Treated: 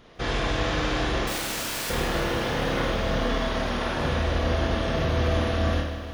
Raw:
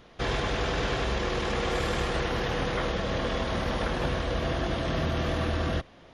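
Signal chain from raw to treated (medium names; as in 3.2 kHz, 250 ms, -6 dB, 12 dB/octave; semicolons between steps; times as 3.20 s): 1.27–1.90 s: integer overflow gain 29 dB; 3.38–3.97 s: bass shelf 190 Hz -8.5 dB; Schroeder reverb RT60 0.58 s, combs from 26 ms, DRR 1 dB; bit-crushed delay 153 ms, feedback 80%, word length 9-bit, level -13 dB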